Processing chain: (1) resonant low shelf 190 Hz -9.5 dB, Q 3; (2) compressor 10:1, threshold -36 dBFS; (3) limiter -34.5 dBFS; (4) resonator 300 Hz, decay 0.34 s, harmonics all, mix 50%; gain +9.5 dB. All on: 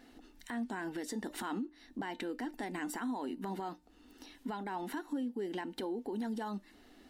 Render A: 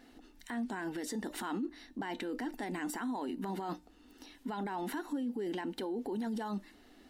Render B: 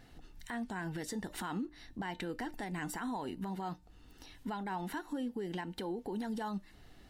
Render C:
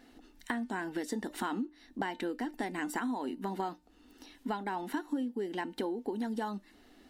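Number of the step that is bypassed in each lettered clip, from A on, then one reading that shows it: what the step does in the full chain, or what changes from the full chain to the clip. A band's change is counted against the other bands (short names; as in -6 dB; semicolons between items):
2, momentary loudness spread change -2 LU; 1, 125 Hz band +5.5 dB; 3, crest factor change +7.5 dB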